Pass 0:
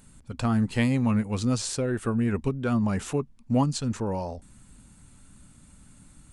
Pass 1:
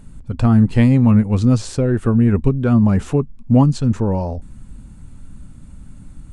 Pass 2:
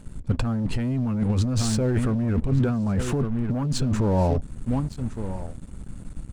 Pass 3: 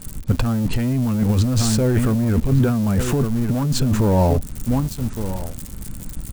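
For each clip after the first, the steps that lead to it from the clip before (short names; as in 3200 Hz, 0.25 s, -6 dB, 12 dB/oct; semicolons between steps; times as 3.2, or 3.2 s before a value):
tilt -2.5 dB/oct; gain +5.5 dB
echo 1.163 s -15.5 dB; sample leveller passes 2; negative-ratio compressor -13 dBFS, ratio -1; gain -9 dB
switching spikes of -27.5 dBFS; gain +5 dB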